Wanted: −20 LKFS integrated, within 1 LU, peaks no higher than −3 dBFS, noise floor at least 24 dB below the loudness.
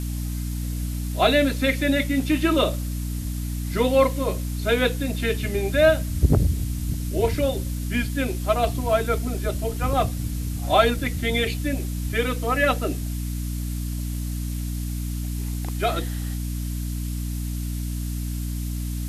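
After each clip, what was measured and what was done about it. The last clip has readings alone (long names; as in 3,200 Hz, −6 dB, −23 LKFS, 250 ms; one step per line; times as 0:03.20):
mains hum 60 Hz; hum harmonics up to 300 Hz; level of the hum −25 dBFS; background noise floor −28 dBFS; target noise floor −49 dBFS; integrated loudness −24.5 LKFS; sample peak −5.0 dBFS; target loudness −20.0 LKFS
→ mains-hum notches 60/120/180/240/300 Hz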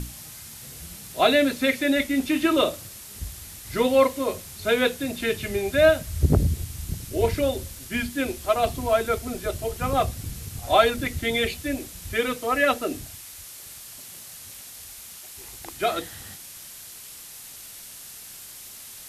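mains hum none found; background noise floor −42 dBFS; target noise floor −48 dBFS
→ noise reduction from a noise print 6 dB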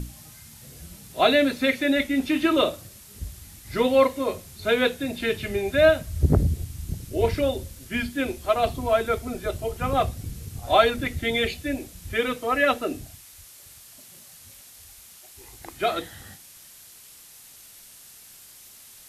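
background noise floor −48 dBFS; integrated loudness −24.0 LKFS; sample peak −5.5 dBFS; target loudness −20.0 LKFS
→ level +4 dB
brickwall limiter −3 dBFS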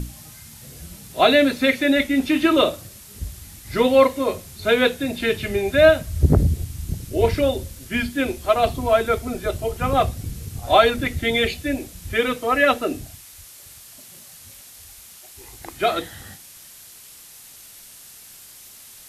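integrated loudness −20.0 LKFS; sample peak −3.0 dBFS; background noise floor −44 dBFS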